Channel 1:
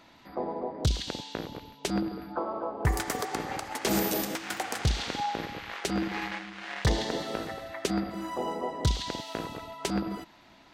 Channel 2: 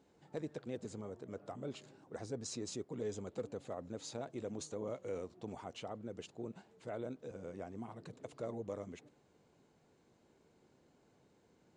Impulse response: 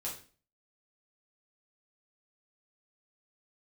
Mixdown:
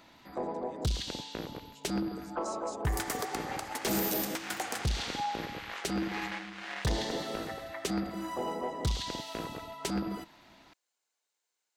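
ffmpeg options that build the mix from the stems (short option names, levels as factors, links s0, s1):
-filter_complex "[0:a]highshelf=f=8700:g=4.5,volume=0.794,asplit=2[s0][s1];[s1]volume=0.0794[s2];[1:a]crystalizer=i=4.5:c=0,highpass=1000,volume=0.2[s3];[2:a]atrim=start_sample=2205[s4];[s2][s4]afir=irnorm=-1:irlink=0[s5];[s0][s3][s5]amix=inputs=3:normalize=0,asoftclip=type=tanh:threshold=0.0668"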